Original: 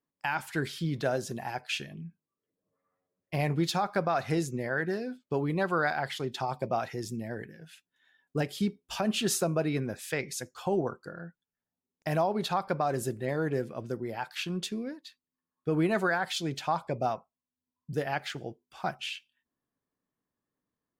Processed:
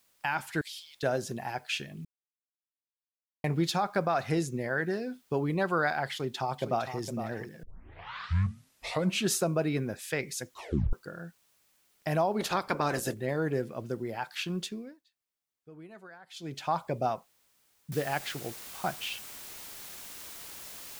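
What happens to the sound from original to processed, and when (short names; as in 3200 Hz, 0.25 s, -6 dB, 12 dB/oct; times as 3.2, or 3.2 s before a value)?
0.61–1.03 inverse Chebyshev high-pass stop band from 790 Hz, stop band 60 dB
2.05–3.44 mute
4.25–5.2 brick-wall FIR low-pass 12000 Hz
6.12–7.02 echo throw 0.46 s, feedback 20%, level -9.5 dB
7.63 tape start 1.68 s
10.51 tape stop 0.42 s
12.39–13.13 spectral limiter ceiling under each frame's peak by 17 dB
14.56–16.74 dip -22 dB, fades 0.46 s
17.92 noise floor step -69 dB -45 dB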